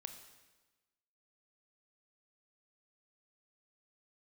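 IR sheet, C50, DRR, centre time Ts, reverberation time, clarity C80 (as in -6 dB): 8.5 dB, 6.5 dB, 19 ms, 1.2 s, 10.0 dB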